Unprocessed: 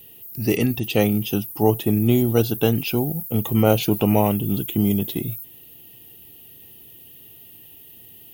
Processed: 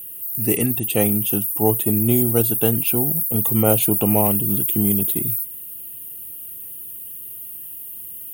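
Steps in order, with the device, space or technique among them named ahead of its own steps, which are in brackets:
budget condenser microphone (high-pass filter 61 Hz; high shelf with overshoot 7,000 Hz +10.5 dB, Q 3)
level −1 dB

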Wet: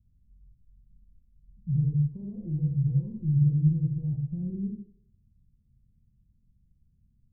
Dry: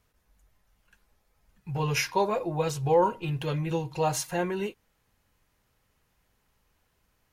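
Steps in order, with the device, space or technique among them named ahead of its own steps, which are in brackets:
club heard from the street (brickwall limiter −24.5 dBFS, peak gain reduction 11.5 dB; low-pass filter 190 Hz 24 dB per octave; convolution reverb RT60 0.60 s, pre-delay 32 ms, DRR 1 dB)
level +7.5 dB

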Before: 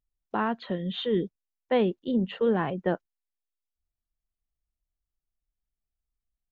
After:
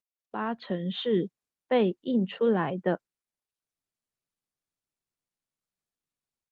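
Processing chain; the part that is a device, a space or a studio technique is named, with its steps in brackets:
video call (high-pass filter 120 Hz 24 dB per octave; automatic gain control gain up to 9 dB; level −8.5 dB; Opus 32 kbit/s 48,000 Hz)

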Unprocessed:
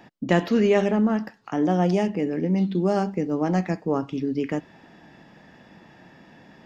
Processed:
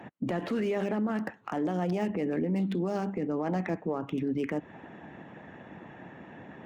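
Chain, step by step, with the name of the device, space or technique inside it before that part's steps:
adaptive Wiener filter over 9 samples
0:03.18–0:04.09: low-pass filter 6,000 Hz 12 dB per octave
harmonic and percussive parts rebalanced percussive +8 dB
podcast mastering chain (high-pass filter 68 Hz 24 dB per octave; de-essing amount 95%; downward compressor 2 to 1, threshold −24 dBFS, peak gain reduction 6 dB; brickwall limiter −22 dBFS, peak gain reduction 10.5 dB; MP3 128 kbit/s 44,100 Hz)

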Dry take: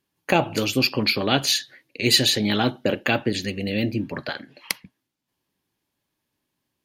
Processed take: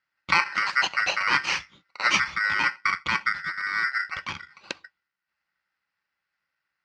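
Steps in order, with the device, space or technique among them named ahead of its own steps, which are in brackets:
0:02.20–0:04.13: Chebyshev low-pass filter 1,500 Hz, order 2
ring modulator pedal into a guitar cabinet (ring modulator with a square carrier 1,700 Hz; loudspeaker in its box 89–4,300 Hz, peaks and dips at 110 Hz −7 dB, 250 Hz −9 dB, 430 Hz −10 dB, 670 Hz −9 dB, 3,500 Hz −8 dB)

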